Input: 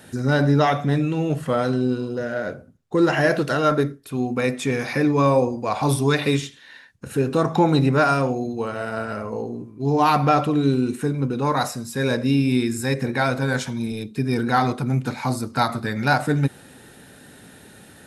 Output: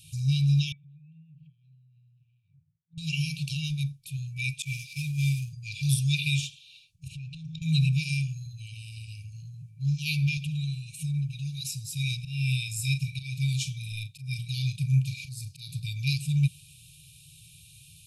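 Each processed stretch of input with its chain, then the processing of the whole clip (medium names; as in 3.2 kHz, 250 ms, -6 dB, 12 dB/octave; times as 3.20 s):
0.72–2.98 s: compression 8:1, threshold -32 dBFS + band-pass filter 470 Hz, Q 1.3 + distance through air 370 m
4.62–5.53 s: CVSD coder 64 kbps + expander -25 dBFS + three bands expanded up and down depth 100%
7.08–7.62 s: low-pass 4.4 kHz + compression 4:1, threshold -29 dBFS
10.37–11.65 s: comb 5.3 ms, depth 70% + compression 4:1, threshold -22 dBFS
12.17–15.70 s: slow attack 225 ms + doubling 38 ms -10.5 dB
whole clip: FFT band-reject 170–2300 Hz; dynamic bell 2 kHz, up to +4 dB, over -49 dBFS, Q 1.9; trim -1.5 dB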